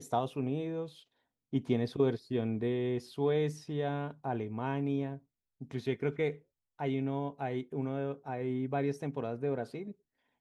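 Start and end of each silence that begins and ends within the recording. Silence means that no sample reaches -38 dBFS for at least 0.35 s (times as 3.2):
0.87–1.53
5.16–5.62
6.33–6.8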